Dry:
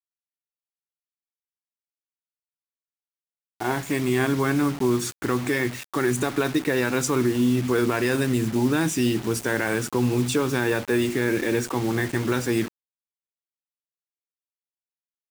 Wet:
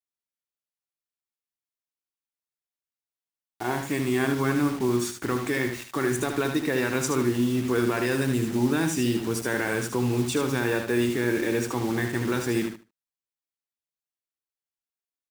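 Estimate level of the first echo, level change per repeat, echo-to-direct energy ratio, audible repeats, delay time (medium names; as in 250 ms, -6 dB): -7.0 dB, -15.0 dB, -7.0 dB, 2, 75 ms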